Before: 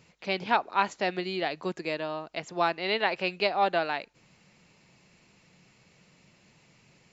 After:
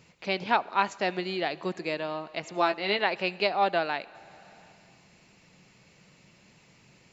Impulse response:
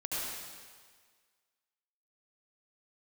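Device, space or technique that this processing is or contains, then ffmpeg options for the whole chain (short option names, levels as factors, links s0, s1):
compressed reverb return: -filter_complex "[0:a]asettb=1/sr,asplit=3[s0][s1][s2];[s0]atrim=end=2.554[s3];[s1]atrim=start=2.55:end=2.99,asetpts=PTS-STARTPTS,afade=t=in:d=0.004:c=qsin,afade=t=out:st=0.436:d=0.004:c=qsin,asplit=2[s4][s5];[s5]adelay=15,volume=0.473[s6];[s4][s6]amix=inputs=2:normalize=0,atrim=end_sample=19404[s7];[s2]atrim=start=2.986[s8];[s3][s7]acrossfade=d=0.004:c1=hsin:c2=qsin[s9];[s9][s8]acrossfade=d=0.004:c1=qsin:c2=hsin,asplit=2[s10][s11];[1:a]atrim=start_sample=2205[s12];[s11][s12]afir=irnorm=-1:irlink=0,acompressor=threshold=0.0126:ratio=5,volume=0.316[s13];[s10][s13]amix=inputs=2:normalize=0"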